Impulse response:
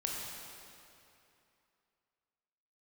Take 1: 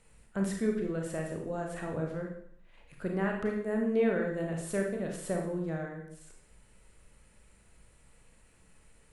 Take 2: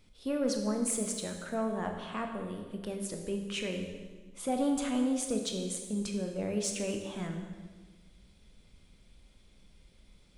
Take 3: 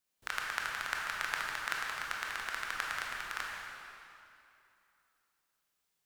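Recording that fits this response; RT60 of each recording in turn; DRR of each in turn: 3; 0.65, 1.4, 2.7 s; 1.0, 3.5, -2.5 dB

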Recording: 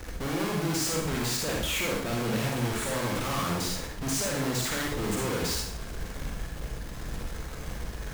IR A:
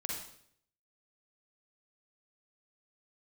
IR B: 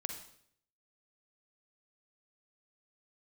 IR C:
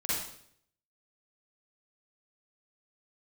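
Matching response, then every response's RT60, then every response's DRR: A; 0.65, 0.65, 0.65 s; -2.0, 4.5, -9.5 dB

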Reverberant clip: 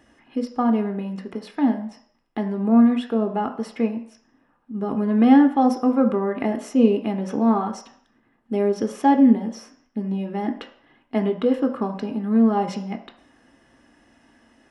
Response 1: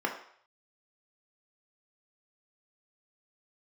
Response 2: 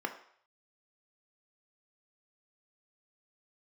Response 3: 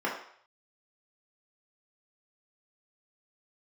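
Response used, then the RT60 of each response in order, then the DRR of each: 2; 0.60, 0.60, 0.60 s; 1.0, 5.0, -4.5 dB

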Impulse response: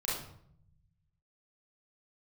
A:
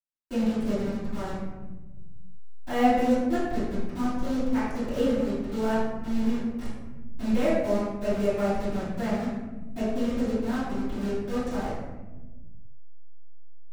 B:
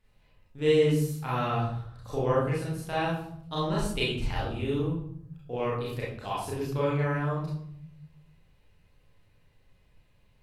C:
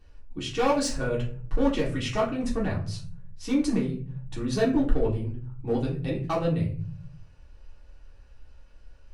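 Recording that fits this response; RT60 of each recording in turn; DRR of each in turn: B; 1.2, 0.65, 0.45 s; -16.5, -7.5, -6.0 dB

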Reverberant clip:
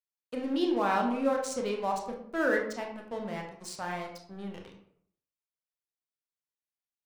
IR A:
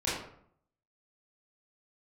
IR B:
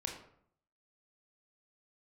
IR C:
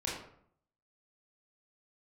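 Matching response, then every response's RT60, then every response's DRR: B; 0.65, 0.65, 0.65 s; -9.5, 1.0, -5.5 dB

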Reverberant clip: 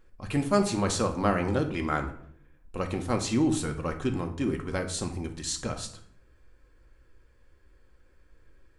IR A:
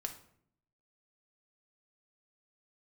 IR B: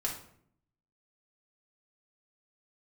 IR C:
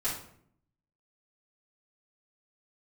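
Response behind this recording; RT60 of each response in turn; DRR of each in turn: A; 0.65, 0.65, 0.65 s; 4.0, -3.0, -11.0 dB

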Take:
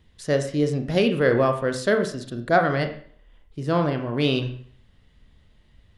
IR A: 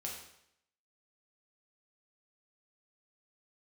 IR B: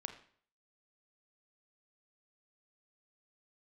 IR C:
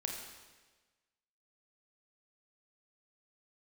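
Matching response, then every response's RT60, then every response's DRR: B; 0.75, 0.55, 1.3 s; -3.0, 6.0, 0.5 dB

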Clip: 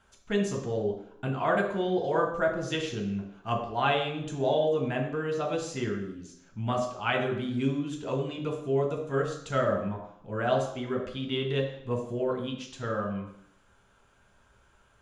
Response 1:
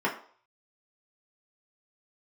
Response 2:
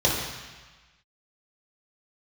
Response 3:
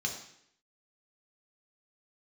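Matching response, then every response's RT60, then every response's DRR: 3; 0.50, 1.3, 0.70 s; -3.5, -5.0, 0.5 dB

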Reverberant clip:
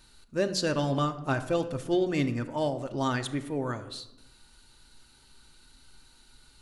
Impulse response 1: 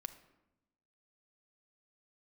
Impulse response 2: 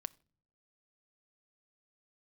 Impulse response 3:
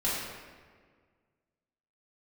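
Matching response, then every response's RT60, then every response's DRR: 1; 0.90 s, not exponential, 1.7 s; 6.5, 12.5, -9.0 dB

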